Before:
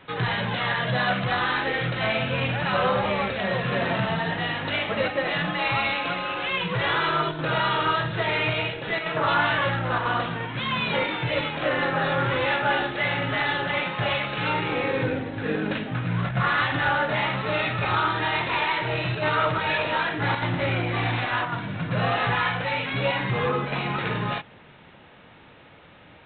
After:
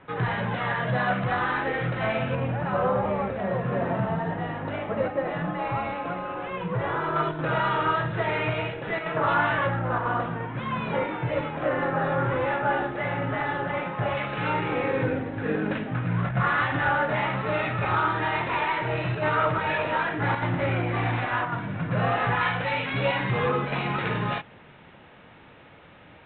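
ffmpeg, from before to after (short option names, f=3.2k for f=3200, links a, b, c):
-af "asetnsamples=n=441:p=0,asendcmd='2.35 lowpass f 1100;7.16 lowpass f 1900;9.67 lowpass f 1400;14.17 lowpass f 2100;22.41 lowpass f 3300',lowpass=1.8k"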